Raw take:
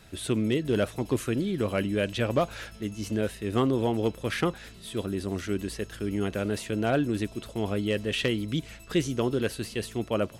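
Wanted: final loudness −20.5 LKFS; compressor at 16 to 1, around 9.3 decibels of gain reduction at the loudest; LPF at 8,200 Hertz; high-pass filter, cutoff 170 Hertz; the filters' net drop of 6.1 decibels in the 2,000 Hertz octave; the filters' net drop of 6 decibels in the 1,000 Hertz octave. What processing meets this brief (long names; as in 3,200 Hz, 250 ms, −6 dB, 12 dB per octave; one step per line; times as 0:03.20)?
high-pass filter 170 Hz
low-pass filter 8,200 Hz
parametric band 1,000 Hz −7.5 dB
parametric band 2,000 Hz −6 dB
downward compressor 16 to 1, threshold −31 dBFS
level +17 dB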